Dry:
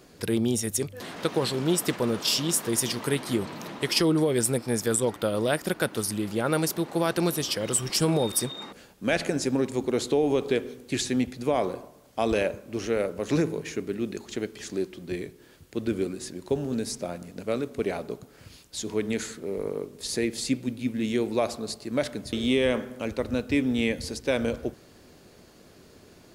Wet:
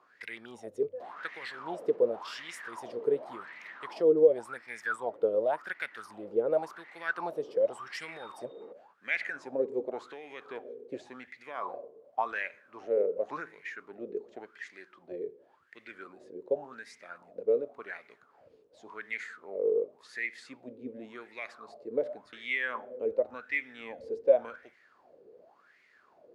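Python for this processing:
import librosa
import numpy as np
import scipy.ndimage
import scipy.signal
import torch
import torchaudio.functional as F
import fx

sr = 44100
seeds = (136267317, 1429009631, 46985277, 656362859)

y = fx.wah_lfo(x, sr, hz=0.9, low_hz=440.0, high_hz=2100.0, q=10.0)
y = y * librosa.db_to_amplitude(8.5)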